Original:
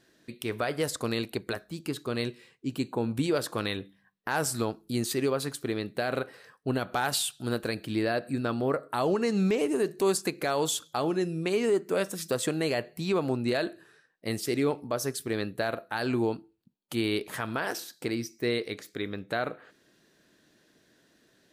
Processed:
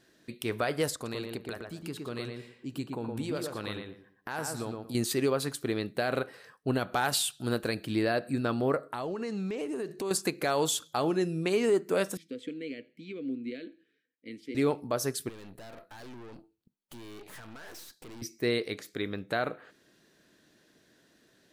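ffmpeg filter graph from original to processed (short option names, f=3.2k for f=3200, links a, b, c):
-filter_complex "[0:a]asettb=1/sr,asplit=3[a][b][c];[a]atrim=end=0.944[d];[b]atrim=start=0.94:end=4.95,asetpts=PTS-STARTPTS,afade=t=in:d=0.004:c=qsin,afade=t=out:st=4.006:d=0.004:c=qsin,acompressor=threshold=-45dB:ratio=1.5:attack=3.2:release=140:knee=1:detection=peak,asplit=2[e][f];[f]adelay=116,lowpass=f=2.1k:p=1,volume=-3dB,asplit=2[g][h];[h]adelay=116,lowpass=f=2.1k:p=1,volume=0.25,asplit=2[i][j];[j]adelay=116,lowpass=f=2.1k:p=1,volume=0.25,asplit=2[k][l];[l]adelay=116,lowpass=f=2.1k:p=1,volume=0.25[m];[e][g][i][k][m]amix=inputs=5:normalize=0,atrim=end_sample=176841[n];[c]atrim=start=4.946[o];[d][n]acrossfade=d=0.004:c1=hsin:c2=qsin[p];[p][o]acrossfade=d=0.004:c1=qsin:c2=hsin,asettb=1/sr,asplit=3[q][r][s];[q]atrim=end=8.894[t];[r]atrim=start=8.89:end=10.11,asetpts=PTS-STARTPTS,afade=t=in:d=0.004:c=qsin,afade=t=out:st=1.216:d=0.004:c=qsin,highshelf=f=11k:g=-11,acompressor=threshold=-32dB:ratio=4:attack=3.2:release=140:knee=1:detection=peak[u];[s]atrim=start=10.106[v];[t][u]acrossfade=d=0.004:c1=hsin:c2=qsin[w];[w][v]acrossfade=d=0.004:c1=qsin:c2=hsin,asettb=1/sr,asplit=3[x][y][z];[x]atrim=end=12.174[aa];[y]atrim=start=12.17:end=14.55,asetpts=PTS-STARTPTS,afade=t=in:d=0.004:c=qsin,afade=t=out:st=2.376:d=0.004:c=qsin,asplit=3[ab][ac][ad];[ab]bandpass=f=270:t=q:w=8,volume=0dB[ae];[ac]bandpass=f=2.29k:t=q:w=8,volume=-6dB[af];[ad]bandpass=f=3.01k:t=q:w=8,volume=-9dB[ag];[ae][af][ag]amix=inputs=3:normalize=0,equalizer=f=490:w=6.8:g=14,aecho=1:1:82|164:0.0631|0.0196,atrim=end_sample=104958[ah];[z]atrim=start=14.546[ai];[aa][ah]acrossfade=d=0.004:c1=hsin:c2=qsin[aj];[aj][ai]acrossfade=d=0.004:c1=qsin:c2=hsin,asettb=1/sr,asplit=3[ak][al][am];[ak]atrim=end=15.294[an];[al]atrim=start=15.29:end=18.22,asetpts=PTS-STARTPTS,afade=t=in:d=0.004:c=qsin,afade=t=out:st=2.926:d=0.004:c=qsin,acompressor=threshold=-32dB:ratio=3:attack=3.2:release=140:knee=1:detection=peak,aeval=exprs='(tanh(178*val(0)+0.8)-tanh(0.8))/178':c=same[ao];[am]atrim=start=18.216[ap];[an][ao]acrossfade=d=0.004:c1=hsin:c2=qsin[aq];[aq][ap]acrossfade=d=0.004:c1=qsin:c2=hsin"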